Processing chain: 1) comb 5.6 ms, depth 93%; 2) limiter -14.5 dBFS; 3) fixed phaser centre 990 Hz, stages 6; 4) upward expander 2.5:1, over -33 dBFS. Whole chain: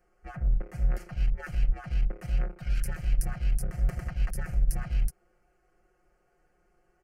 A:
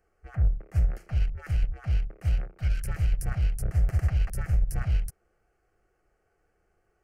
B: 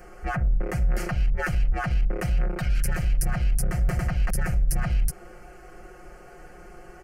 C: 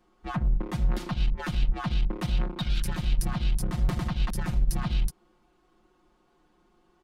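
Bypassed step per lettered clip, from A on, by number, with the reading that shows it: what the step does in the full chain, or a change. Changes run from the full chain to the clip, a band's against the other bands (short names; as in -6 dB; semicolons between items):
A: 1, loudness change +3.0 LU; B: 4, 125 Hz band -5.0 dB; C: 3, 4 kHz band +9.5 dB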